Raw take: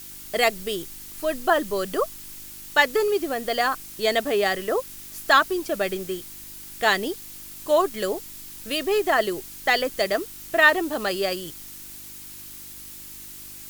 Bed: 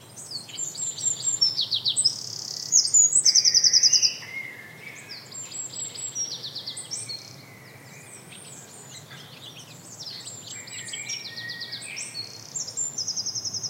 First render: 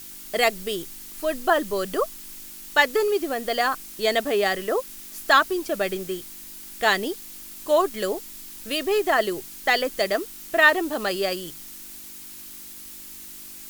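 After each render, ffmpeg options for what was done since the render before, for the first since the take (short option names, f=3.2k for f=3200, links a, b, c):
-af "bandreject=f=50:t=h:w=4,bandreject=f=100:t=h:w=4,bandreject=f=150:t=h:w=4"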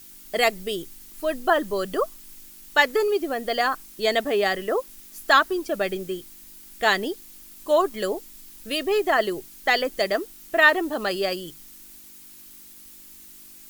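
-af "afftdn=nr=7:nf=-41"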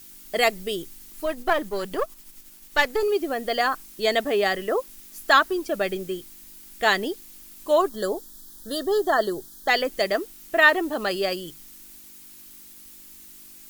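-filter_complex "[0:a]asettb=1/sr,asplit=3[a][b][c];[a]atrim=end=1.264[d];[b]atrim=start=1.26:end=3.03,asetpts=PTS-STARTPTS,afade=t=in:d=0.004:c=qsin,afade=t=out:st=1.766:d=0.004:c=qsin,aeval=exprs='if(lt(val(0),0),0.447*val(0),val(0))':c=same[e];[c]atrim=start=3.026[f];[d][e]acrossfade=d=0.004:c1=hsin:c2=qsin[g];[g][f]acrossfade=d=0.004:c1=qsin:c2=hsin,asplit=3[h][i][j];[h]afade=t=out:st=7.88:d=0.02[k];[i]asuperstop=centerf=2400:order=8:qfactor=1.7,afade=t=in:st=7.88:d=0.02,afade=t=out:st=9.68:d=0.02[l];[j]afade=t=in:st=9.68:d=0.02[m];[k][l][m]amix=inputs=3:normalize=0"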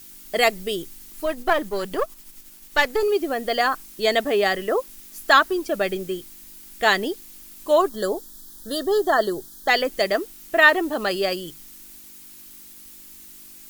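-af "volume=2dB,alimiter=limit=-3dB:level=0:latency=1"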